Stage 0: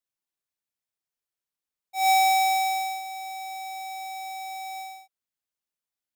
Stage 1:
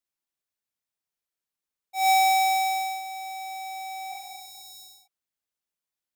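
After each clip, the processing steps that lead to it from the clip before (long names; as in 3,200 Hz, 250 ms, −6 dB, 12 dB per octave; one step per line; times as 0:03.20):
healed spectral selection 0:04.14–0:05.05, 320–3,500 Hz both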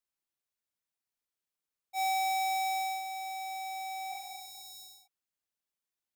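downward compressor 6 to 1, threshold −28 dBFS, peak gain reduction 8 dB
level −3 dB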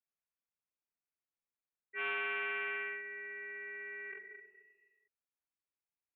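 voice inversion scrambler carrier 2,700 Hz
highs frequency-modulated by the lows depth 0.21 ms
level −6 dB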